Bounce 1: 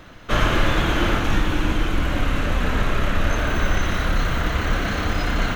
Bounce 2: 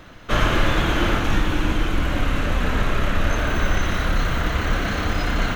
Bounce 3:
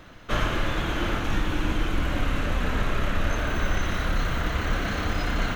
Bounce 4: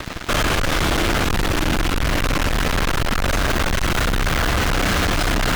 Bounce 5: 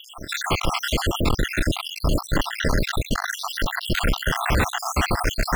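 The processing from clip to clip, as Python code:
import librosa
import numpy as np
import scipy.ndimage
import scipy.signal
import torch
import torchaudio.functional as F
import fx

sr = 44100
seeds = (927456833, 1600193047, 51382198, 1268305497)

y1 = x
y2 = fx.rider(y1, sr, range_db=10, speed_s=0.5)
y2 = y2 * librosa.db_to_amplitude(-5.0)
y3 = fx.fuzz(y2, sr, gain_db=45.0, gate_db=-45.0)
y3 = y3 * librosa.db_to_amplitude(-4.0)
y4 = fx.spec_dropout(y3, sr, seeds[0], share_pct=69)
y4 = y4 * librosa.db_to_amplitude(1.0)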